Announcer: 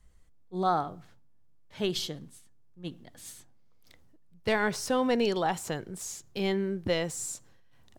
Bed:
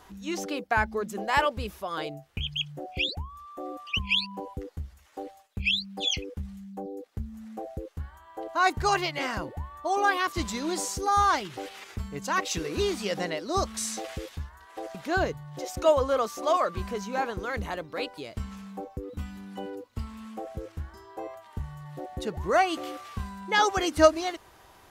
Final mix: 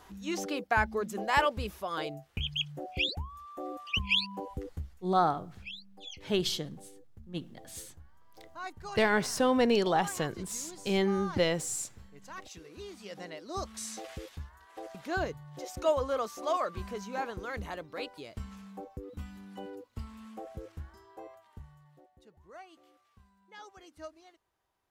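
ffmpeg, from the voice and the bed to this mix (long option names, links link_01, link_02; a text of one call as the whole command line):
ffmpeg -i stem1.wav -i stem2.wav -filter_complex "[0:a]adelay=4500,volume=1dB[link_01];[1:a]volume=10dB,afade=type=out:start_time=4.78:duration=0.3:silence=0.158489,afade=type=in:start_time=12.86:duration=1.34:silence=0.251189,afade=type=out:start_time=20.72:duration=1.41:silence=0.0891251[link_02];[link_01][link_02]amix=inputs=2:normalize=0" out.wav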